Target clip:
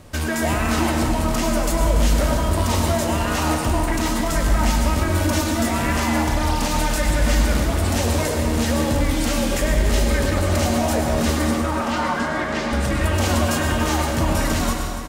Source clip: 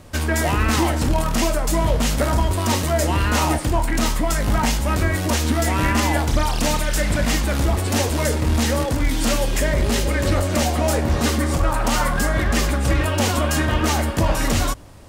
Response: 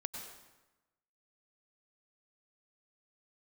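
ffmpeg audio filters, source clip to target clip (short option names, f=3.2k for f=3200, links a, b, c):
-filter_complex "[0:a]asettb=1/sr,asplit=3[a][b][c];[a]atrim=end=5.074[d];[b]atrim=start=5.07:end=5.6,asetpts=PTS-STARTPTS,afade=t=in:d=0.004:c=qsin,afade=t=out:st=0.526:d=0.004:c=qsin,aecho=1:1:3.4:0.73,atrim=end_sample=23373[e];[c]atrim=start=5.596[f];[d][e]acrossfade=d=0.004:c1=hsin:c2=qsin[g];[g][f]acrossfade=d=0.004:c1=qsin:c2=hsin,alimiter=limit=-13dB:level=0:latency=1,asettb=1/sr,asplit=3[h][i][j];[h]atrim=end=11.514[k];[i]atrim=start=11.51:end=12.73,asetpts=PTS-STARTPTS,afade=t=in:d=0.004:c=qsin,afade=t=out:st=1.216:d=0.004:c=qsin,highpass=190,lowpass=4.4k[l];[j]atrim=start=12.726[m];[k][l]acrossfade=d=0.004:c1=hsin:c2=qsin[n];[n][m]acrossfade=d=0.004:c1=qsin:c2=hsin,aecho=1:1:287|574|861|1148|1435|1722|2009:0.282|0.163|0.0948|0.055|0.0319|0.0185|0.0107[o];[1:a]atrim=start_sample=2205[p];[o][p]afir=irnorm=-1:irlink=0,volume=2dB"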